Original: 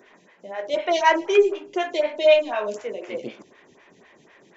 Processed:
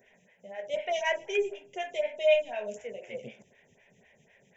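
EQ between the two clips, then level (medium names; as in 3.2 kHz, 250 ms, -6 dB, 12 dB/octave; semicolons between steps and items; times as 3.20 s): peaking EQ 1.1 kHz -14 dB 1.7 oct; static phaser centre 1.2 kHz, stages 6; 0.0 dB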